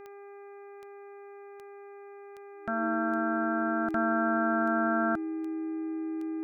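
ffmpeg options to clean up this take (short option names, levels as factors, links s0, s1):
-af "adeclick=t=4,bandreject=f=402:t=h:w=4,bandreject=f=804:t=h:w=4,bandreject=f=1206:t=h:w=4,bandreject=f=1608:t=h:w=4,bandreject=f=2010:t=h:w=4,bandreject=f=2412:t=h:w=4,bandreject=f=320:w=30,agate=range=0.0891:threshold=0.0112"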